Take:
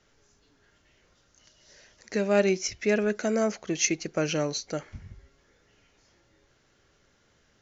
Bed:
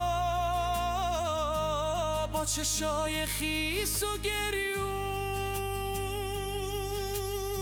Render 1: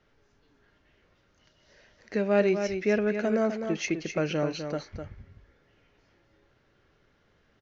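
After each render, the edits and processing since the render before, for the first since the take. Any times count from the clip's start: distance through air 210 m; on a send: delay 254 ms -7.5 dB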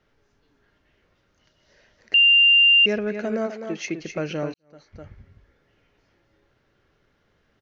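2.14–2.86 s: bleep 2.79 kHz -11.5 dBFS; 3.46–3.99 s: high-pass 360 Hz -> 89 Hz; 4.54–5.09 s: fade in quadratic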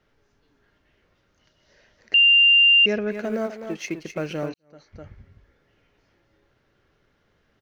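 3.11–4.49 s: companding laws mixed up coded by A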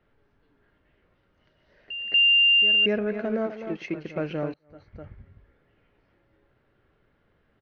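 distance through air 300 m; pre-echo 238 ms -14 dB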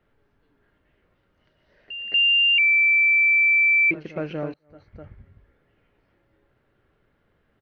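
2.58–3.91 s: bleep 2.33 kHz -14.5 dBFS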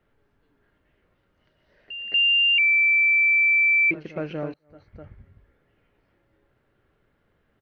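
trim -1 dB

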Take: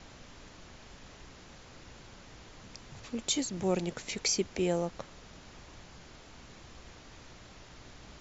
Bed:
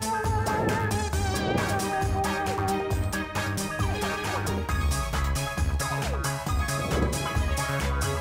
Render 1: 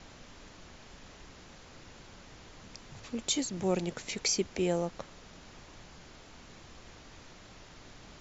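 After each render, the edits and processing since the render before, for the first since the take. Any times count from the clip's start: de-hum 60 Hz, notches 2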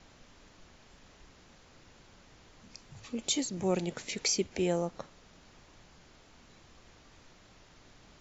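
noise print and reduce 6 dB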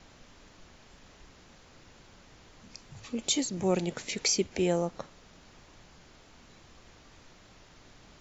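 trim +2.5 dB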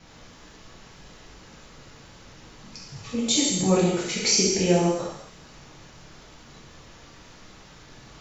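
feedback echo behind a high-pass 71 ms, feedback 70%, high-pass 4.3 kHz, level -9 dB; gated-style reverb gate 310 ms falling, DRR -6.5 dB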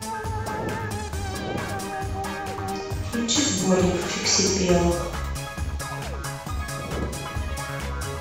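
add bed -3 dB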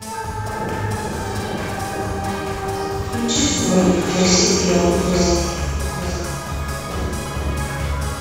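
on a send: echo whose repeats swap between lows and highs 444 ms, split 1.5 kHz, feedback 53%, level -2 dB; on the sum: Schroeder reverb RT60 0.93 s, DRR -1.5 dB

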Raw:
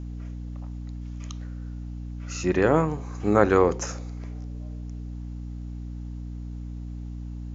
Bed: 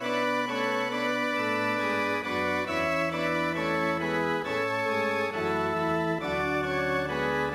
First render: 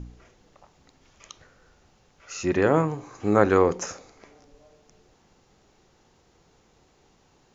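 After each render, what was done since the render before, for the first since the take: de-hum 60 Hz, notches 5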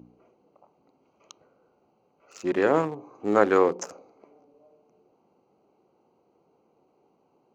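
local Wiener filter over 25 samples; high-pass 260 Hz 12 dB/octave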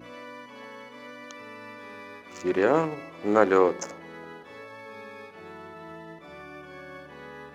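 add bed -15.5 dB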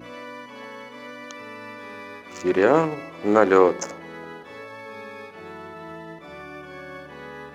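trim +4.5 dB; peak limiter -2 dBFS, peak gain reduction 2.5 dB

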